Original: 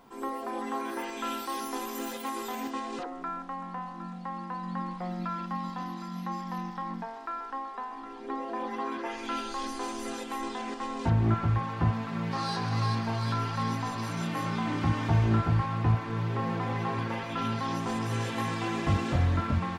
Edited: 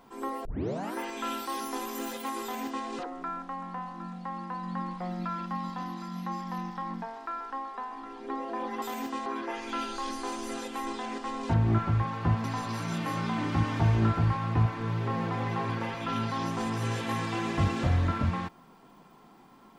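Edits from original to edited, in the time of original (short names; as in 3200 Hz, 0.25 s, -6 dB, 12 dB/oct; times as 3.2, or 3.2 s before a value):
0.45 tape start 0.51 s
2.43–2.87 copy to 8.82
12–13.73 cut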